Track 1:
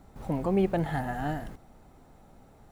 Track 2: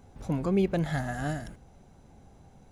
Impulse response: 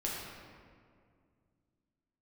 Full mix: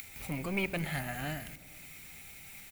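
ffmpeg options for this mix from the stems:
-filter_complex "[0:a]acompressor=mode=upward:threshold=-30dB:ratio=2.5,highpass=frequency=2300:width_type=q:width=6.7,aemphasis=mode=production:type=75fm,volume=-4.5dB[link_01];[1:a]lowpass=4200,volume=25dB,asoftclip=hard,volume=-25dB,adelay=0.4,volume=-7.5dB,asplit=2[link_02][link_03];[link_03]volume=-18dB[link_04];[2:a]atrim=start_sample=2205[link_05];[link_04][link_05]afir=irnorm=-1:irlink=0[link_06];[link_01][link_02][link_06]amix=inputs=3:normalize=0"

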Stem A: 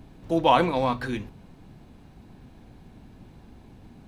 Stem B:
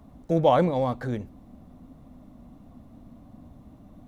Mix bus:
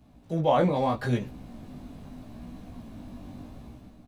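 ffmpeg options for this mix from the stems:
ffmpeg -i stem1.wav -i stem2.wav -filter_complex "[0:a]highshelf=frequency=2300:gain=7,acompressor=threshold=-29dB:ratio=6,volume=-10.5dB[link_01];[1:a]volume=-1,adelay=8.3,volume=-4.5dB[link_02];[link_01][link_02]amix=inputs=2:normalize=0,dynaudnorm=framelen=230:gausssize=5:maxgain=12dB,flanger=delay=16:depth=4.9:speed=0.77" out.wav

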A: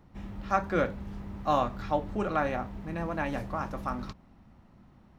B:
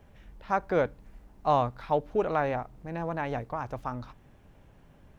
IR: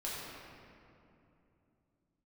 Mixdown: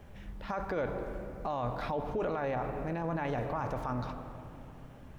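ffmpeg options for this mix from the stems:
-filter_complex "[0:a]volume=-13.5dB[link_01];[1:a]alimiter=limit=-21.5dB:level=0:latency=1,volume=-1,volume=3dB,asplit=2[link_02][link_03];[link_03]volume=-11dB[link_04];[2:a]atrim=start_sample=2205[link_05];[link_04][link_05]afir=irnorm=-1:irlink=0[link_06];[link_01][link_02][link_06]amix=inputs=3:normalize=0,alimiter=level_in=1.5dB:limit=-24dB:level=0:latency=1:release=19,volume=-1.5dB"

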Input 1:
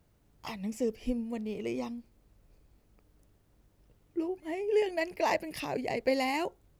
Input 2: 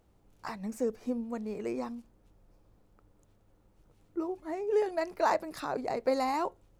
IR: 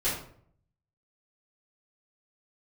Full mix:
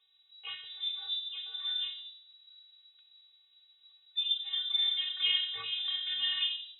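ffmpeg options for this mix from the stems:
-filter_complex "[0:a]volume=1.5dB[link_01];[1:a]agate=range=-33dB:threshold=-54dB:ratio=3:detection=peak,volume=-1,volume=-2.5dB,asplit=3[link_02][link_03][link_04];[link_03]volume=-6dB[link_05];[link_04]apad=whole_len=299631[link_06];[link_01][link_06]sidechaincompress=threshold=-41dB:ratio=8:attack=34:release=101[link_07];[2:a]atrim=start_sample=2205[link_08];[link_05][link_08]afir=irnorm=-1:irlink=0[link_09];[link_07][link_02][link_09]amix=inputs=3:normalize=0,afftfilt=real='hypot(re,im)*cos(PI*b)':imag='0':win_size=512:overlap=0.75,lowpass=frequency=3300:width_type=q:width=0.5098,lowpass=frequency=3300:width_type=q:width=0.6013,lowpass=frequency=3300:width_type=q:width=0.9,lowpass=frequency=3300:width_type=q:width=2.563,afreqshift=-3900"

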